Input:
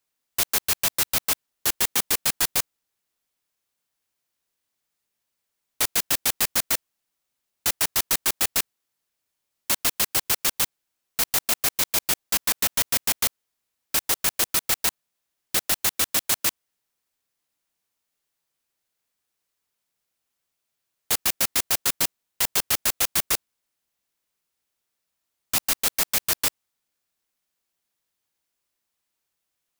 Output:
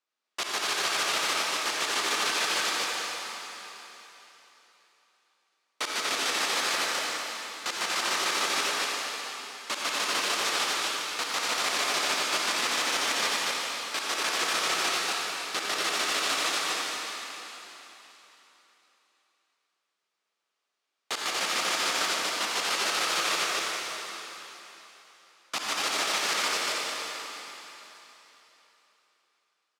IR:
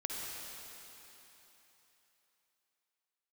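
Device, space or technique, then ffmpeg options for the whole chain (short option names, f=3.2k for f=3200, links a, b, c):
station announcement: -filter_complex "[0:a]highpass=320,lowpass=5k,equalizer=f=1.2k:t=o:w=0.22:g=6.5,aecho=1:1:105|239.1:0.355|0.794[a];[1:a]atrim=start_sample=2205[b];[a][b]afir=irnorm=-1:irlink=0,volume=-1.5dB"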